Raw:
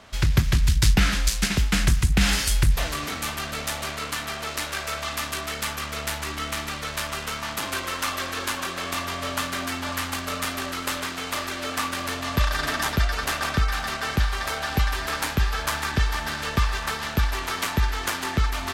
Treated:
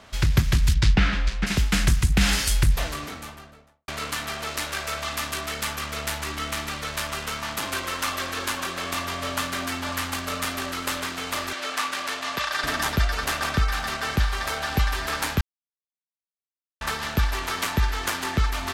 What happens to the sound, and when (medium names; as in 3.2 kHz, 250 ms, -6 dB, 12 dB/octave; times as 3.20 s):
0.73–1.46 s: low-pass 4.9 kHz -> 2.2 kHz
2.62–3.88 s: studio fade out
11.53–12.64 s: frequency weighting A
15.41–16.81 s: mute